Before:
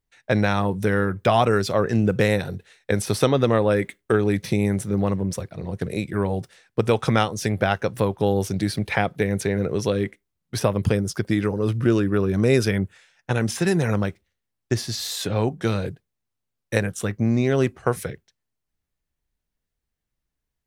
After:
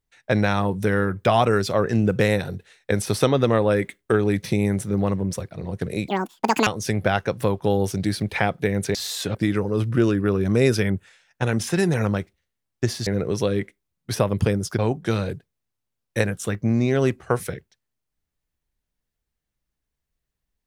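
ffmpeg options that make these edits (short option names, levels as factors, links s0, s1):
-filter_complex "[0:a]asplit=7[s0][s1][s2][s3][s4][s5][s6];[s0]atrim=end=6.084[s7];[s1]atrim=start=6.08:end=7.23,asetpts=PTS-STARTPTS,asetrate=86436,aresample=44100[s8];[s2]atrim=start=7.226:end=9.512[s9];[s3]atrim=start=14.948:end=15.352[s10];[s4]atrim=start=11.228:end=14.952[s11];[s5]atrim=start=9.508:end=11.232[s12];[s6]atrim=start=15.348[s13];[s7][s8]acrossfade=d=0.004:c1=hsin:c2=hsin[s14];[s14][s9]acrossfade=d=0.004:c1=hsin:c2=hsin[s15];[s15][s10]acrossfade=d=0.004:c1=hsin:c2=hsin[s16];[s16][s11]acrossfade=d=0.004:c1=hsin:c2=hsin[s17];[s17][s12]acrossfade=d=0.004:c1=hsin:c2=hsin[s18];[s18][s13]acrossfade=d=0.004:c1=hsin:c2=hsin"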